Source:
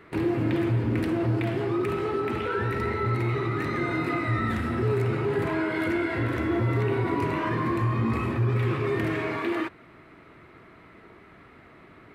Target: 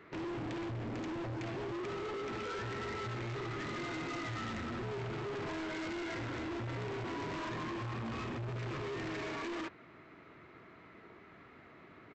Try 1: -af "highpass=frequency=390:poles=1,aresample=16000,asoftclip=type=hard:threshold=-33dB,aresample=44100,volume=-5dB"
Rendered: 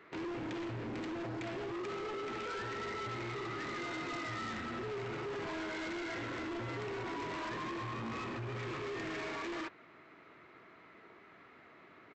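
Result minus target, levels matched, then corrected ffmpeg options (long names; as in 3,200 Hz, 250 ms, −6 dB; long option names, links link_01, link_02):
125 Hz band −4.0 dB
-af "highpass=frequency=99:poles=1,aresample=16000,asoftclip=type=hard:threshold=-33dB,aresample=44100,volume=-5dB"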